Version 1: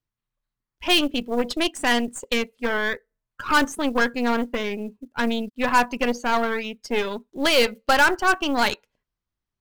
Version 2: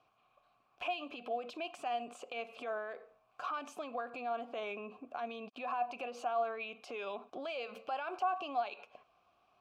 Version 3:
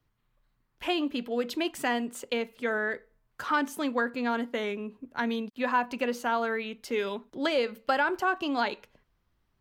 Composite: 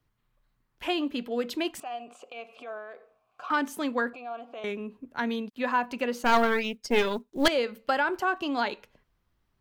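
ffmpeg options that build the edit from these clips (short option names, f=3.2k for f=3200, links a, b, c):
-filter_complex "[1:a]asplit=2[a][b];[2:a]asplit=4[c][d][e][f];[c]atrim=end=1.802[g];[a]atrim=start=1.798:end=3.502[h];[d]atrim=start=3.498:end=4.132[i];[b]atrim=start=4.128:end=4.642[j];[e]atrim=start=4.638:end=6.232[k];[0:a]atrim=start=6.228:end=7.482[l];[f]atrim=start=7.478[m];[g][h]acrossfade=d=0.004:c1=hsin:c2=hsin[n];[n][i]acrossfade=d=0.004:c1=hsin:c2=hsin[o];[o][j]acrossfade=d=0.004:c1=hsin:c2=hsin[p];[p][k]acrossfade=d=0.004:c1=hsin:c2=hsin[q];[q][l]acrossfade=d=0.004:c1=hsin:c2=hsin[r];[r][m]acrossfade=d=0.004:c1=hsin:c2=hsin"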